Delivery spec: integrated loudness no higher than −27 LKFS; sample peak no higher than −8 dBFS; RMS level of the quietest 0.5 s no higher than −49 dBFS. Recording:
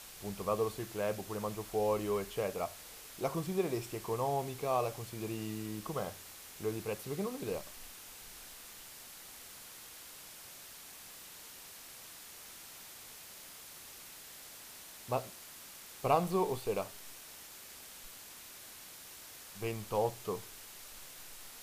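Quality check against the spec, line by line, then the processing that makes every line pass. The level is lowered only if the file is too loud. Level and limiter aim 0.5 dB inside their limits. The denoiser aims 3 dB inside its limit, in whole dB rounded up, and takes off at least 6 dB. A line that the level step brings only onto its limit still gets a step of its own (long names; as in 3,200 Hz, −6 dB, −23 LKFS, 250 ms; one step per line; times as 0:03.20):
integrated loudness −39.5 LKFS: in spec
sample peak −15.0 dBFS: in spec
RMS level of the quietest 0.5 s −51 dBFS: in spec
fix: no processing needed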